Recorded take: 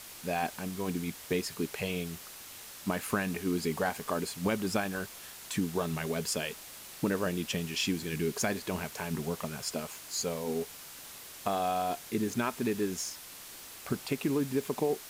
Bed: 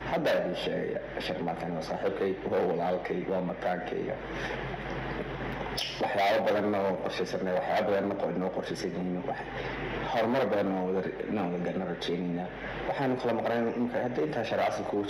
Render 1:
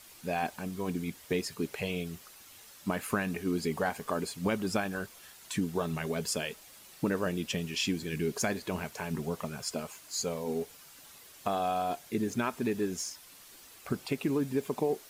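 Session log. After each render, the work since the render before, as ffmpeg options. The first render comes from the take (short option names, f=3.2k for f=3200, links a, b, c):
-af "afftdn=nr=8:nf=-48"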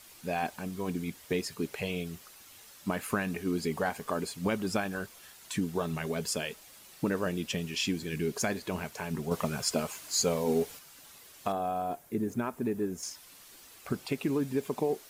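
-filter_complex "[0:a]asettb=1/sr,asplit=3[a][b][c];[a]atrim=end=9.314[d];[b]atrim=start=9.31:end=10.79,asetpts=PTS-STARTPTS,afade=t=in:d=0.004:c=qsin,afade=t=out:st=1.476:d=0.004:c=qsin,acontrast=44[e];[c]atrim=start=10.786[f];[d][e]acrossfade=d=0.004:c1=hsin:c2=qsin[g];[g][f]acrossfade=d=0.004:c1=qsin:c2=hsin,asettb=1/sr,asplit=3[h][i][j];[h]atrim=end=11.524[k];[i]atrim=start=11.52:end=13.03,asetpts=PTS-STARTPTS,afade=t=in:d=0.004:c=qsin,afade=t=out:st=1.506:d=0.004:c=qsin,equalizer=f=4k:t=o:w=2.3:g=-12.5[l];[j]atrim=start=13.026[m];[k][l]acrossfade=d=0.004:c1=hsin:c2=qsin[n];[n][m]acrossfade=d=0.004:c1=qsin:c2=hsin"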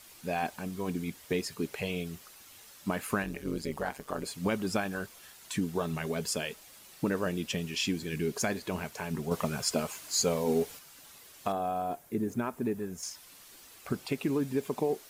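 -filter_complex "[0:a]asplit=3[a][b][c];[a]afade=t=out:st=3.22:d=0.02[d];[b]tremolo=f=140:d=0.824,afade=t=in:st=3.22:d=0.02,afade=t=out:st=4.24:d=0.02[e];[c]afade=t=in:st=4.24:d=0.02[f];[d][e][f]amix=inputs=3:normalize=0,asettb=1/sr,asplit=3[g][h][i];[g]atrim=end=12.744[j];[h]atrim=start=12.74:end=13.14,asetpts=PTS-STARTPTS,afade=t=in:d=0.004:c=qsin,afade=t=out:st=0.396:d=0.004:c=qsin,equalizer=f=320:w=1.9:g=-9.5[k];[i]atrim=start=13.136[l];[j][k]acrossfade=d=0.004:c1=hsin:c2=qsin[m];[m][l]acrossfade=d=0.004:c1=qsin:c2=hsin"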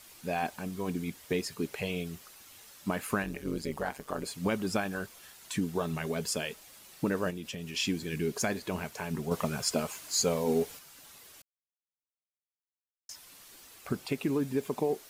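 -filter_complex "[0:a]asettb=1/sr,asplit=3[a][b][c];[a]atrim=end=7.304[d];[b]atrim=start=7.3:end=7.75,asetpts=PTS-STARTPTS,afade=t=in:d=0.004:c=qsin,afade=t=out:st=0.446:d=0.004:c=qsin,acompressor=threshold=-36dB:ratio=4:attack=3.2:release=140:knee=1:detection=peak[e];[c]atrim=start=7.746[f];[d][e]acrossfade=d=0.004:c1=hsin:c2=qsin[g];[g][f]acrossfade=d=0.004:c1=qsin:c2=hsin,asplit=3[h][i][j];[h]atrim=end=11.42,asetpts=PTS-STARTPTS,afade=t=out:st=11.416:d=0.004:c=hsin[k];[i]atrim=start=11.42:end=13.09,asetpts=PTS-STARTPTS,volume=0[l];[j]atrim=start=13.09,asetpts=PTS-STARTPTS,afade=t=in:d=0.004:c=hsin[m];[k][l][m]concat=n=3:v=0:a=1"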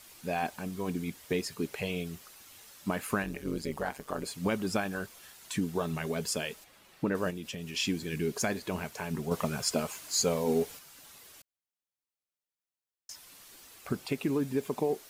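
-filter_complex "[0:a]asettb=1/sr,asplit=3[a][b][c];[a]atrim=end=6.644[d];[b]atrim=start=6.64:end=7.15,asetpts=PTS-STARTPTS,afade=t=in:d=0.004:c=qsin,afade=t=out:st=0.506:d=0.004:c=qsin,bass=f=250:g=-1,treble=f=4k:g=-11[e];[c]atrim=start=7.146[f];[d][e]acrossfade=d=0.004:c1=hsin:c2=qsin[g];[g][f]acrossfade=d=0.004:c1=qsin:c2=hsin"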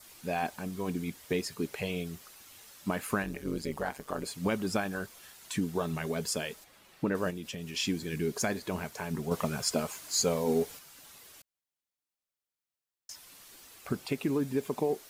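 -af "adynamicequalizer=threshold=0.00178:dfrequency=2700:dqfactor=3.7:tfrequency=2700:tqfactor=3.7:attack=5:release=100:ratio=0.375:range=2:mode=cutabove:tftype=bell"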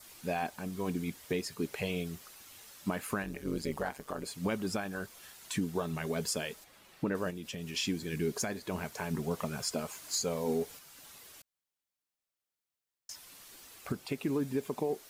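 -af "alimiter=limit=-22dB:level=0:latency=1:release=477"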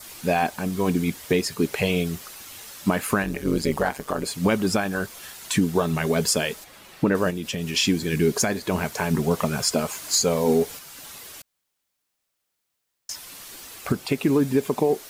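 -af "volume=12dB"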